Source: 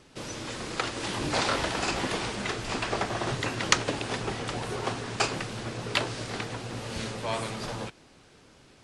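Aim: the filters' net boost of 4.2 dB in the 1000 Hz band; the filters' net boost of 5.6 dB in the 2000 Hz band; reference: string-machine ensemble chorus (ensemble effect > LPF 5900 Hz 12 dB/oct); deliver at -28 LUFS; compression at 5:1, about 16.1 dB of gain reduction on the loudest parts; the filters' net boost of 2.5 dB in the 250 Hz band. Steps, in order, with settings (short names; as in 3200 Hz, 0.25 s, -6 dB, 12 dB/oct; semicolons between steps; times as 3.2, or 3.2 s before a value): bell 250 Hz +3 dB; bell 1000 Hz +3.5 dB; bell 2000 Hz +6 dB; compressor 5:1, threshold -34 dBFS; ensemble effect; LPF 5900 Hz 12 dB/oct; gain +12 dB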